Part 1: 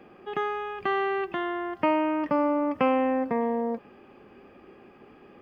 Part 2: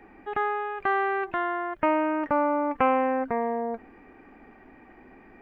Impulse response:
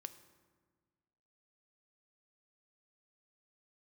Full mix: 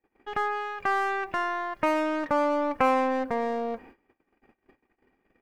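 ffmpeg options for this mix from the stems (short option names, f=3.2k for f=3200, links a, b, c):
-filter_complex "[0:a]aecho=1:1:2.1:0.55,aeval=exprs='(tanh(50.1*val(0)+0.6)-tanh(0.6))/50.1':c=same,volume=-7dB,asplit=2[a][b];[b]volume=-9.5dB[c];[1:a]volume=-3dB,asplit=2[d][e];[e]volume=-9dB[f];[2:a]atrim=start_sample=2205[g];[c][f]amix=inputs=2:normalize=0[h];[h][g]afir=irnorm=-1:irlink=0[i];[a][d][i]amix=inputs=3:normalize=0,agate=range=-34dB:threshold=-48dB:ratio=16:detection=peak,highshelf=f=3.5k:g=8"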